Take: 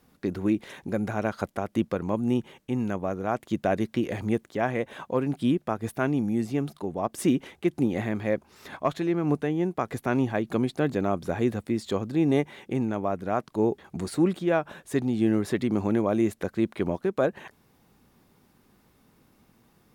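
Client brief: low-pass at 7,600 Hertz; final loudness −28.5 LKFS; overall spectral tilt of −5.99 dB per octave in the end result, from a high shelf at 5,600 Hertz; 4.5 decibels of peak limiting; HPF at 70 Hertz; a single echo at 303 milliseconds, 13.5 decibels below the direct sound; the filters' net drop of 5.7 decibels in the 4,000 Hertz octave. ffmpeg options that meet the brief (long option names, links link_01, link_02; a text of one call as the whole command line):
ffmpeg -i in.wav -af "highpass=70,lowpass=7600,equalizer=frequency=4000:width_type=o:gain=-6,highshelf=frequency=5600:gain=-4,alimiter=limit=-16dB:level=0:latency=1,aecho=1:1:303:0.211,volume=0.5dB" out.wav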